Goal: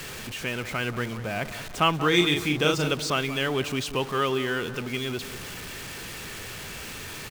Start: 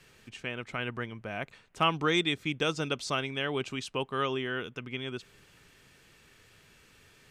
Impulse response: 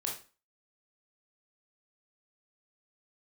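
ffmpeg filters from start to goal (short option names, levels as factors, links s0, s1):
-filter_complex "[0:a]aeval=exprs='val(0)+0.5*0.015*sgn(val(0))':c=same,asplit=3[s0][s1][s2];[s0]afade=t=out:st=2.12:d=0.02[s3];[s1]asplit=2[s4][s5];[s5]adelay=40,volume=0.668[s6];[s4][s6]amix=inputs=2:normalize=0,afade=t=in:st=2.12:d=0.02,afade=t=out:st=2.91:d=0.02[s7];[s2]afade=t=in:st=2.91:d=0.02[s8];[s3][s7][s8]amix=inputs=3:normalize=0,asplit=2[s9][s10];[s10]adelay=184,lowpass=f=2000:p=1,volume=0.237,asplit=2[s11][s12];[s12]adelay=184,lowpass=f=2000:p=1,volume=0.49,asplit=2[s13][s14];[s14]adelay=184,lowpass=f=2000:p=1,volume=0.49,asplit=2[s15][s16];[s16]adelay=184,lowpass=f=2000:p=1,volume=0.49,asplit=2[s17][s18];[s18]adelay=184,lowpass=f=2000:p=1,volume=0.49[s19];[s9][s11][s13][s15][s17][s19]amix=inputs=6:normalize=0,volume=1.5"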